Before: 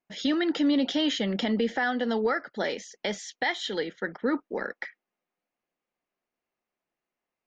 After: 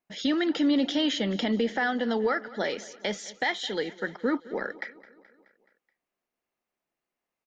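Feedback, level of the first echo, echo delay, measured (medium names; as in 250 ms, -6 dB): 58%, -19.5 dB, 213 ms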